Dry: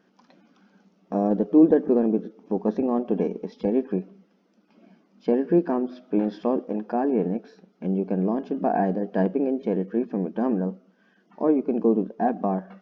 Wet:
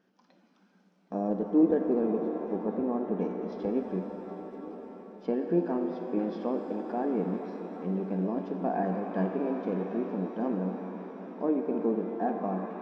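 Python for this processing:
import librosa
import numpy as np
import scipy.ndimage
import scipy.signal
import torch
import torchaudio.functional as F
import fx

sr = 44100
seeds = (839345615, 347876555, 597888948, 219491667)

y = fx.lowpass(x, sr, hz=1700.0, slope=12, at=(2.65, 3.19))
y = fx.echo_swing(y, sr, ms=1025, ratio=3, feedback_pct=75, wet_db=-20.5)
y = fx.rev_shimmer(y, sr, seeds[0], rt60_s=3.9, semitones=7, shimmer_db=-8, drr_db=5.0)
y = F.gain(torch.from_numpy(y), -7.5).numpy()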